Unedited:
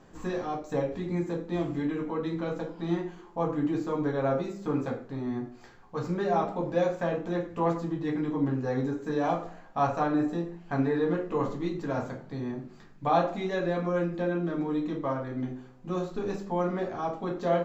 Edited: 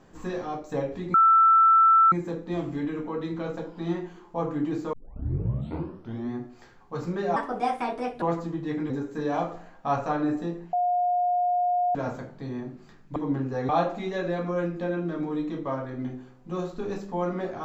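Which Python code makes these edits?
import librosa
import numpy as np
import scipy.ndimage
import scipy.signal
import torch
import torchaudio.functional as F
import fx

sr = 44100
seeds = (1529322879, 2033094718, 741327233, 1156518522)

y = fx.edit(x, sr, fx.insert_tone(at_s=1.14, length_s=0.98, hz=1330.0, db=-14.0),
    fx.tape_start(start_s=3.95, length_s=1.38),
    fx.speed_span(start_s=6.38, length_s=1.22, speed=1.42),
    fx.move(start_s=8.28, length_s=0.53, to_s=13.07),
    fx.bleep(start_s=10.64, length_s=1.22, hz=714.0, db=-21.0), tone=tone)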